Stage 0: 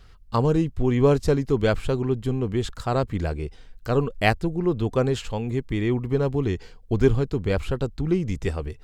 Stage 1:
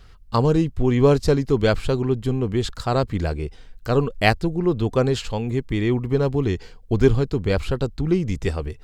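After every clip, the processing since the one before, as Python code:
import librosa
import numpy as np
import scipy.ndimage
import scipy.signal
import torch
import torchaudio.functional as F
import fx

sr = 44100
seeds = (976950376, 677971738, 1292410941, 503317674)

y = fx.dynamic_eq(x, sr, hz=4500.0, q=2.2, threshold_db=-51.0, ratio=4.0, max_db=5)
y = y * 10.0 ** (2.5 / 20.0)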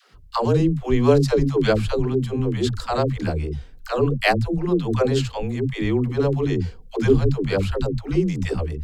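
y = fx.dispersion(x, sr, late='lows', ms=139.0, hz=300.0)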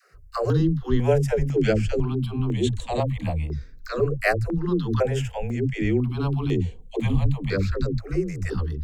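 y = fx.phaser_held(x, sr, hz=2.0, low_hz=900.0, high_hz=4900.0)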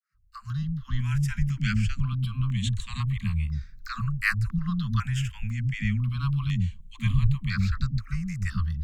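y = fx.fade_in_head(x, sr, length_s=1.33)
y = scipy.signal.sosfilt(scipy.signal.cheby1(4, 1.0, [210.0, 1100.0], 'bandstop', fs=sr, output='sos'), y)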